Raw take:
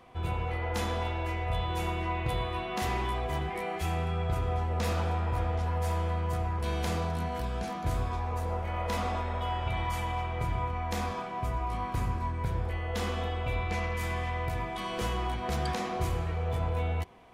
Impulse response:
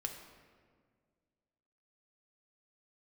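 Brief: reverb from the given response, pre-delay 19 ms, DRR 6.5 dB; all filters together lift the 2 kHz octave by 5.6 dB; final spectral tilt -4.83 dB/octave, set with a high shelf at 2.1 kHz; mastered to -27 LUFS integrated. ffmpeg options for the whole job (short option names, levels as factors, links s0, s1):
-filter_complex "[0:a]equalizer=f=2000:t=o:g=3.5,highshelf=f=2100:g=5.5,asplit=2[s0][s1];[1:a]atrim=start_sample=2205,adelay=19[s2];[s1][s2]afir=irnorm=-1:irlink=0,volume=0.501[s3];[s0][s3]amix=inputs=2:normalize=0,volume=1.41"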